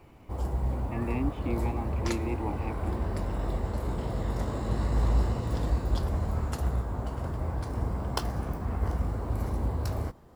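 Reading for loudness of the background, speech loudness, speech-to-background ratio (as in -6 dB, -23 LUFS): -31.5 LUFS, -36.5 LUFS, -5.0 dB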